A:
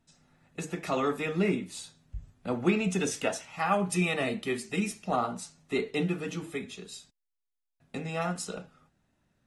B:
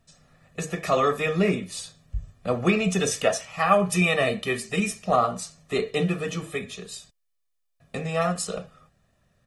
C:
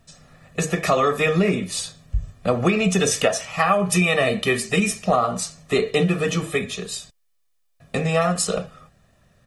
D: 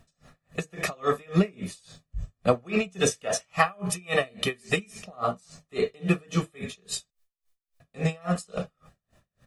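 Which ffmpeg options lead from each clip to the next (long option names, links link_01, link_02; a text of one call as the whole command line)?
ffmpeg -i in.wav -af "aecho=1:1:1.7:0.59,volume=5.5dB" out.wav
ffmpeg -i in.wav -af "acompressor=threshold=-23dB:ratio=6,volume=8dB" out.wav
ffmpeg -i in.wav -af "aeval=exprs='val(0)*pow(10,-33*(0.5-0.5*cos(2*PI*3.6*n/s))/20)':channel_layout=same" out.wav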